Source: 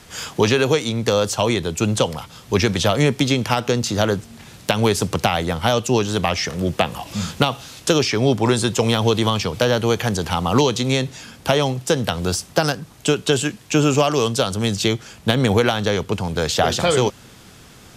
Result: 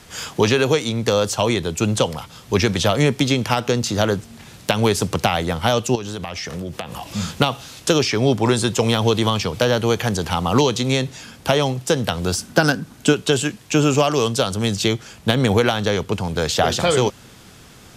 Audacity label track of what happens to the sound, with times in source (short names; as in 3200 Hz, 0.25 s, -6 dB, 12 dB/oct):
5.950000	7.150000	compressor, threshold -25 dBFS
12.370000	13.120000	small resonant body resonances 240/1500 Hz, height 13 dB -> 10 dB, ringing for 40 ms